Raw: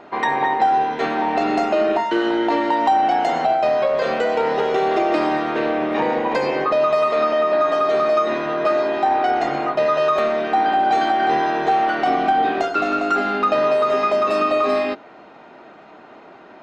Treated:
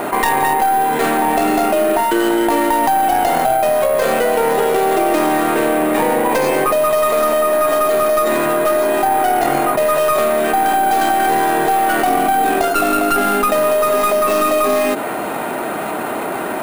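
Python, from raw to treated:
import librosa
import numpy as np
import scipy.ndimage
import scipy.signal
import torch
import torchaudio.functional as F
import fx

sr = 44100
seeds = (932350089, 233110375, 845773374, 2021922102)

y = fx.tracing_dist(x, sr, depth_ms=0.094)
y = np.repeat(y[::4], 4)[:len(y)]
y = fx.env_flatten(y, sr, amount_pct=70)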